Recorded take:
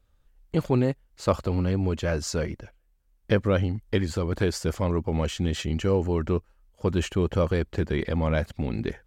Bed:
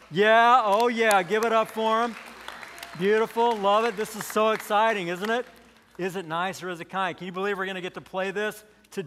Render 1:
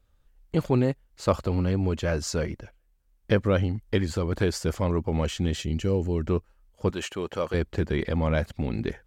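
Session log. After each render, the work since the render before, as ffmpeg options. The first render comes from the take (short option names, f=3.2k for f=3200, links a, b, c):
-filter_complex "[0:a]asettb=1/sr,asplit=3[a][b][c];[a]atrim=end=5.564[d];[b]atrim=start=5.56:end=6.28,asetpts=PTS-STARTPTS,afade=t=in:d=0.004:c=qsin,afade=t=out:st=0.716:d=0.004:c=qsin,equalizer=f=1.1k:t=o:w=1.8:g=-9[e];[c]atrim=start=6.276[f];[d][e]acrossfade=d=0.004:c1=hsin:c2=qsin[g];[g][f]acrossfade=d=0.004:c1=qsin:c2=hsin,asettb=1/sr,asplit=3[h][i][j];[h]atrim=end=6.904[k];[i]atrim=start=6.9:end=7.54,asetpts=PTS-STARTPTS,afade=t=in:d=0.004:c=qsin,afade=t=out:st=0.636:d=0.004:c=qsin,highpass=f=590:p=1[l];[j]atrim=start=7.536[m];[k][l]acrossfade=d=0.004:c1=hsin:c2=qsin[n];[n][m]acrossfade=d=0.004:c1=qsin:c2=hsin"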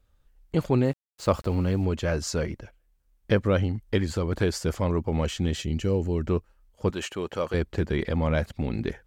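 -filter_complex "[0:a]asettb=1/sr,asplit=3[a][b][c];[a]atrim=end=0.854[d];[b]atrim=start=0.85:end=1.85,asetpts=PTS-STARTPTS,afade=t=in:d=0.004:c=qsin,afade=t=out:st=0.996:d=0.004:c=qsin,aeval=exprs='val(0)*gte(abs(val(0)),0.00501)':c=same[e];[c]atrim=start=1.846[f];[d][e]acrossfade=d=0.004:c1=hsin:c2=qsin[g];[g][f]acrossfade=d=0.004:c1=qsin:c2=hsin"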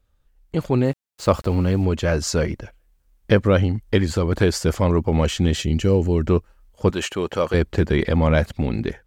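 -af "dynaudnorm=f=300:g=5:m=7.5dB"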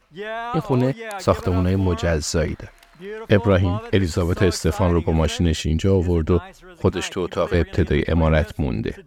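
-filter_complex "[1:a]volume=-11dB[a];[0:a][a]amix=inputs=2:normalize=0"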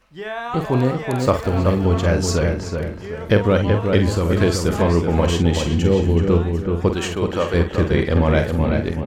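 -filter_complex "[0:a]asplit=2[a][b];[b]adelay=47,volume=-8dB[c];[a][c]amix=inputs=2:normalize=0,asplit=2[d][e];[e]adelay=378,lowpass=f=2.5k:p=1,volume=-4.5dB,asplit=2[f][g];[g]adelay=378,lowpass=f=2.5k:p=1,volume=0.38,asplit=2[h][i];[i]adelay=378,lowpass=f=2.5k:p=1,volume=0.38,asplit=2[j][k];[k]adelay=378,lowpass=f=2.5k:p=1,volume=0.38,asplit=2[l][m];[m]adelay=378,lowpass=f=2.5k:p=1,volume=0.38[n];[f][h][j][l][n]amix=inputs=5:normalize=0[o];[d][o]amix=inputs=2:normalize=0"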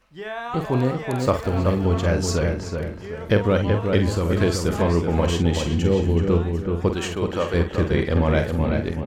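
-af "volume=-3dB"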